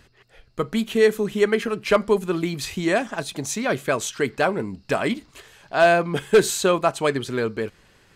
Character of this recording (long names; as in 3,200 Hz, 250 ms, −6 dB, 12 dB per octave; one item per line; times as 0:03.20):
background noise floor −57 dBFS
spectral slope −4.0 dB per octave